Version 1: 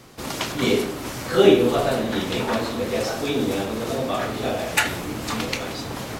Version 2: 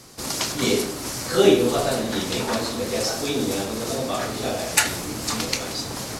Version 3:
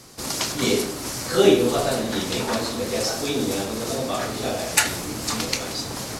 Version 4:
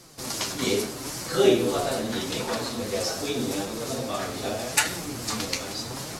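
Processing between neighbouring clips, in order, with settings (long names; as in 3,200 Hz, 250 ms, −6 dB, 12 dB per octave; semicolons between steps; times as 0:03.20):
flat-topped bell 7,100 Hz +9 dB; level −1.5 dB
no processing that can be heard
flanger 0.81 Hz, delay 5.5 ms, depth 6 ms, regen +41%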